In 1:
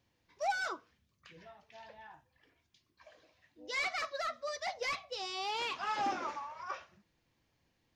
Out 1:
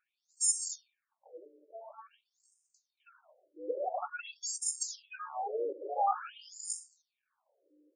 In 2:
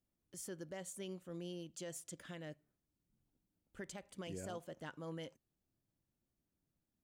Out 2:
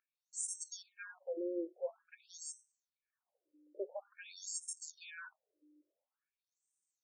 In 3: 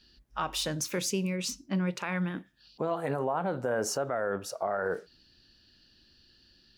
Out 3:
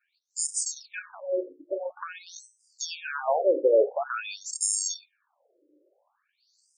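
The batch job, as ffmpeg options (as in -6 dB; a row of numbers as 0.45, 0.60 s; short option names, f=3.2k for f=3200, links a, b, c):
-filter_complex "[0:a]equalizer=f=410:t=o:w=2.8:g=12.5,bandreject=f=60:t=h:w=6,bandreject=f=120:t=h:w=6,bandreject=f=180:t=h:w=6,bandreject=f=240:t=h:w=6,bandreject=f=300:t=h:w=6,bandreject=f=360:t=h:w=6,bandreject=f=420:t=h:w=6,acrossover=split=4300[a][b];[a]acrusher=samples=22:mix=1:aa=0.000001[c];[c][b]amix=inputs=2:normalize=0,aeval=exprs='val(0)+0.00398*(sin(2*PI*60*n/s)+sin(2*PI*2*60*n/s)/2+sin(2*PI*3*60*n/s)/3+sin(2*PI*4*60*n/s)/4+sin(2*PI*5*60*n/s)/5)':c=same,aexciter=amount=7.6:drive=6.3:freq=7.4k,apsyclip=2.5dB,highpass=f=140:w=0.5412,highpass=f=140:w=1.3066,equalizer=f=190:t=q:w=4:g=4,equalizer=f=570:t=q:w=4:g=5,equalizer=f=3k:t=q:w=4:g=-7,equalizer=f=6.1k:t=q:w=4:g=5,lowpass=f=9.5k:w=0.5412,lowpass=f=9.5k:w=1.3066,afftfilt=real='re*between(b*sr/1024,400*pow(6900/400,0.5+0.5*sin(2*PI*0.48*pts/sr))/1.41,400*pow(6900/400,0.5+0.5*sin(2*PI*0.48*pts/sr))*1.41)':imag='im*between(b*sr/1024,400*pow(6900/400,0.5+0.5*sin(2*PI*0.48*pts/sr))/1.41,400*pow(6900/400,0.5+0.5*sin(2*PI*0.48*pts/sr))*1.41)':win_size=1024:overlap=0.75,volume=-4dB"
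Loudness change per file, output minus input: +2.0, +4.5, +4.0 LU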